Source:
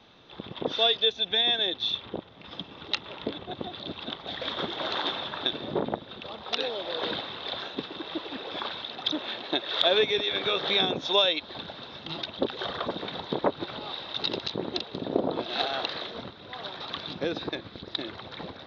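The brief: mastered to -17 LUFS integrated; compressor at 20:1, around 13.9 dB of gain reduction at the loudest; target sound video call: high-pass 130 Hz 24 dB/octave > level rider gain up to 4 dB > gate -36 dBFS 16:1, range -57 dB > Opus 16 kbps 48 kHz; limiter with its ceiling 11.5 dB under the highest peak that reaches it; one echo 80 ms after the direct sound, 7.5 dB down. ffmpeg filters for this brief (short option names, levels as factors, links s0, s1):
-af "acompressor=threshold=0.0251:ratio=20,alimiter=level_in=1.33:limit=0.0631:level=0:latency=1,volume=0.75,highpass=f=130:w=0.5412,highpass=f=130:w=1.3066,aecho=1:1:80:0.422,dynaudnorm=m=1.58,agate=range=0.00141:threshold=0.0158:ratio=16,volume=9.44" -ar 48000 -c:a libopus -b:a 16k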